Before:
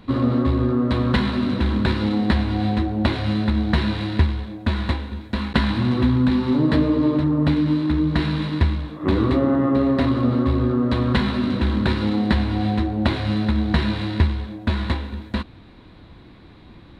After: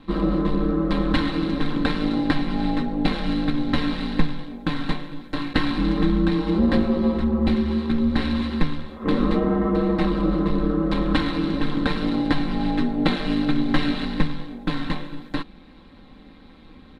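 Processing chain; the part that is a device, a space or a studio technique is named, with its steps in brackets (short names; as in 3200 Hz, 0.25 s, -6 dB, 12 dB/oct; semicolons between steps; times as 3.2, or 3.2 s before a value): 12.77–14.05 comb 3.6 ms, depth 69%; ring-modulated robot voice (ring modulator 79 Hz; comb 3.8 ms, depth 68%)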